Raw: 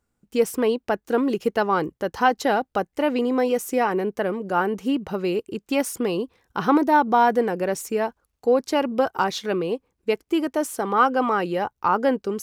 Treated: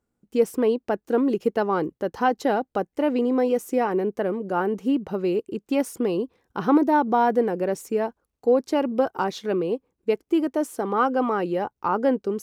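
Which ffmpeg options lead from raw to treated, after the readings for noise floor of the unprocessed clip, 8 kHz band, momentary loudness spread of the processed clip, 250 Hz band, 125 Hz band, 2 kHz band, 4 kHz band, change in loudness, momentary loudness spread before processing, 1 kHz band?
-78 dBFS, -7.0 dB, 7 LU, +0.5 dB, -1.0 dB, -5.5 dB, -6.5 dB, -1.0 dB, 8 LU, -3.5 dB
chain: -af "equalizer=f=320:t=o:w=2.8:g=8,volume=-7dB"

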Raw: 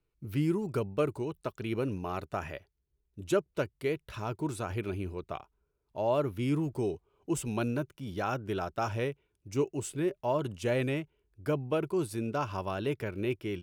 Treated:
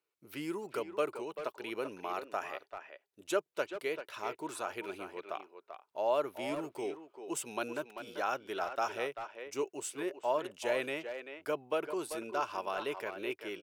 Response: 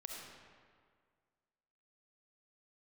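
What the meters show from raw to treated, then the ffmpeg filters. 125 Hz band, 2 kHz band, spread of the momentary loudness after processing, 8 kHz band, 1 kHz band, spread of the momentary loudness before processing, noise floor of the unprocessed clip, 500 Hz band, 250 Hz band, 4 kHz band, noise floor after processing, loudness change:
-22.5 dB, +0.5 dB, 10 LU, 0.0 dB, 0.0 dB, 8 LU, -79 dBFS, -3.0 dB, -9.5 dB, +0.5 dB, -82 dBFS, -4.0 dB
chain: -filter_complex "[0:a]highpass=510,asplit=2[a][b];[b]adelay=390,highpass=300,lowpass=3.4k,asoftclip=type=hard:threshold=-27dB,volume=-8dB[c];[a][c]amix=inputs=2:normalize=0"

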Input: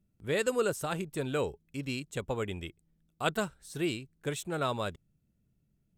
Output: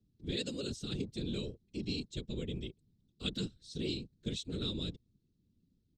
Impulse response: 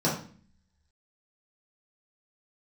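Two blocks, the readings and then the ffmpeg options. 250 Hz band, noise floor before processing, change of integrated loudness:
-2.0 dB, -75 dBFS, -5.5 dB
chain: -filter_complex "[0:a]firequalizer=gain_entry='entry(380,0);entry(630,-30);entry(3900,6);entry(12000,-28)':delay=0.05:min_phase=1,acrossover=split=200|960|7500[a][b][c][d];[b]alimiter=level_in=12dB:limit=-24dB:level=0:latency=1,volume=-12dB[e];[a][e][c][d]amix=inputs=4:normalize=0,afftfilt=real='hypot(re,im)*cos(2*PI*random(0))':imag='hypot(re,im)*sin(2*PI*random(1))':win_size=512:overlap=0.75,volume=6dB"

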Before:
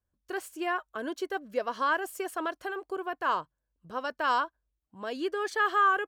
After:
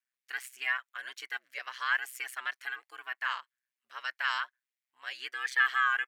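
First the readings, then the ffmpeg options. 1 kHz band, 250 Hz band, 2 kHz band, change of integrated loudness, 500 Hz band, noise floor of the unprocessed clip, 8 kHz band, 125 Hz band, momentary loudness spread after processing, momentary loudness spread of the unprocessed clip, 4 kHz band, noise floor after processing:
-8.0 dB, under -30 dB, +2.5 dB, -2.0 dB, -24.5 dB, -84 dBFS, -1.0 dB, n/a, 14 LU, 11 LU, +2.5 dB, under -85 dBFS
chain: -af "aeval=exprs='val(0)*sin(2*PI*64*n/s)':c=same,highpass=f=2k:t=q:w=3.4,volume=1.5dB"

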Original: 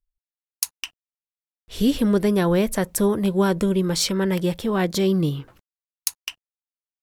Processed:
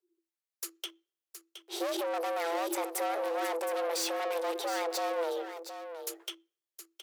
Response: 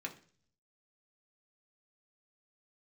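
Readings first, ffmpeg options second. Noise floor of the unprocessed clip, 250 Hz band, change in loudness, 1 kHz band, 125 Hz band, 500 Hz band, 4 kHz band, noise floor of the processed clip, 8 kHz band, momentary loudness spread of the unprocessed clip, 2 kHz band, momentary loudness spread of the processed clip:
under -85 dBFS, -21.5 dB, -12.0 dB, -2.0 dB, under -40 dB, -9.0 dB, -9.0 dB, under -85 dBFS, -9.5 dB, 14 LU, -6.5 dB, 17 LU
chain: -filter_complex "[0:a]aeval=exprs='(tanh(39.8*val(0)+0.3)-tanh(0.3))/39.8':c=same,afreqshift=330,aecho=1:1:718:0.316,asplit=2[a][b];[1:a]atrim=start_sample=2205[c];[b][c]afir=irnorm=-1:irlink=0,volume=-17.5dB[d];[a][d]amix=inputs=2:normalize=0"

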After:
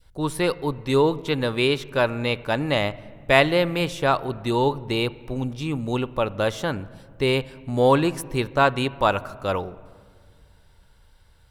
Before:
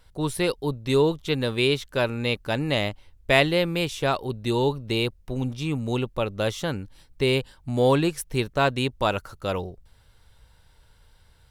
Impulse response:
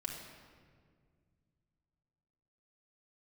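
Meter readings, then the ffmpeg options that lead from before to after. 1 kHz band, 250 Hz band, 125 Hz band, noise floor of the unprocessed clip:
+5.0 dB, +1.5 dB, 0.0 dB, -57 dBFS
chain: -filter_complex "[0:a]adynamicequalizer=threshold=0.0178:dfrequency=1100:dqfactor=0.82:tfrequency=1100:tqfactor=0.82:attack=5:release=100:ratio=0.375:range=3:mode=boostabove:tftype=bell,asplit=2[a][b];[1:a]atrim=start_sample=2205,lowpass=2.7k[c];[b][c]afir=irnorm=-1:irlink=0,volume=-12.5dB[d];[a][d]amix=inputs=2:normalize=0,volume=-1dB"

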